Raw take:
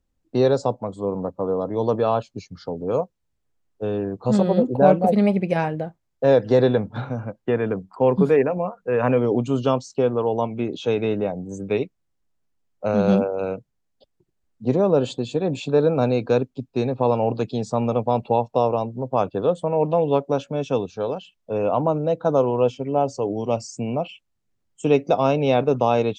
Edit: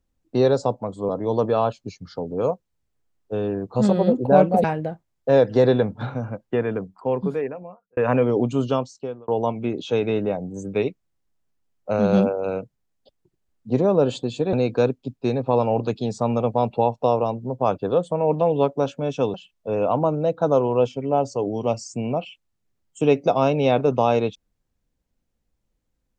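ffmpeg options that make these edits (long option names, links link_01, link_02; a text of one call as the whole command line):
ffmpeg -i in.wav -filter_complex "[0:a]asplit=7[link_01][link_02][link_03][link_04][link_05][link_06][link_07];[link_01]atrim=end=1.092[link_08];[link_02]atrim=start=1.588:end=5.142[link_09];[link_03]atrim=start=5.588:end=8.92,asetpts=PTS-STARTPTS,afade=type=out:start_time=1.772:duration=1.56[link_10];[link_04]atrim=start=8.92:end=10.23,asetpts=PTS-STARTPTS,afade=type=in:duration=0.004:curve=hsin,afade=type=out:start_time=0.63:duration=0.68[link_11];[link_05]atrim=start=10.23:end=15.482,asetpts=PTS-STARTPTS,afade=type=in:duration=0.004:curve=hsin[link_12];[link_06]atrim=start=16.048:end=20.862[link_13];[link_07]atrim=start=21.168[link_14];[link_08][link_09]acrossfade=duration=0.004:curve1=hsin:curve2=hsin[link_15];[link_10][link_11][link_12]concat=n=3:v=0:a=1[link_16];[link_15][link_16]acrossfade=duration=0.004:curve1=hsin:curve2=hsin[link_17];[link_17][link_13]acrossfade=duration=0.004:curve1=hsin:curve2=hsin[link_18];[link_18][link_14]acrossfade=duration=0.004:curve1=hsin:curve2=hsin" out.wav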